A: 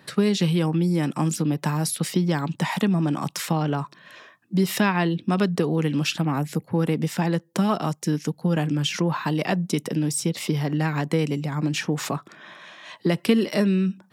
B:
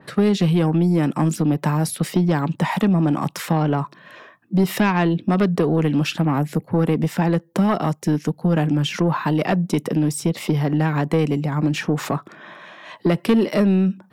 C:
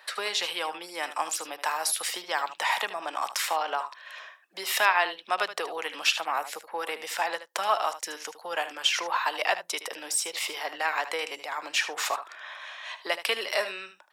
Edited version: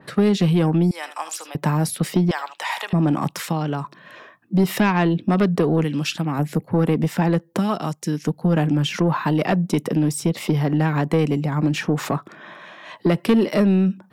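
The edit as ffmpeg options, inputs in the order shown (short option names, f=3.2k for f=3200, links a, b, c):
-filter_complex "[2:a]asplit=2[a][b];[0:a]asplit=3[c][d][e];[1:a]asplit=6[f][g][h][i][j][k];[f]atrim=end=0.912[l];[a]atrim=start=0.908:end=1.552[m];[g]atrim=start=1.548:end=2.312[n];[b]atrim=start=2.308:end=2.932[o];[h]atrim=start=2.928:end=3.432[p];[c]atrim=start=3.428:end=3.842[q];[i]atrim=start=3.838:end=5.842[r];[d]atrim=start=5.838:end=6.392[s];[j]atrim=start=6.388:end=7.592[t];[e]atrim=start=7.588:end=8.232[u];[k]atrim=start=8.228[v];[l][m]acrossfade=d=0.004:c1=hsin:c2=hsin[w];[w][n]acrossfade=d=0.004:c1=hsin:c2=hsin[x];[x][o]acrossfade=d=0.004:c1=hsin:c2=hsin[y];[y][p]acrossfade=d=0.004:c1=hsin:c2=hsin[z];[z][q]acrossfade=d=0.004:c1=hsin:c2=hsin[aa];[aa][r]acrossfade=d=0.004:c1=hsin:c2=hsin[ab];[ab][s]acrossfade=d=0.004:c1=hsin:c2=hsin[ac];[ac][t]acrossfade=d=0.004:c1=hsin:c2=hsin[ad];[ad][u]acrossfade=d=0.004:c1=hsin:c2=hsin[ae];[ae][v]acrossfade=d=0.004:c1=hsin:c2=hsin"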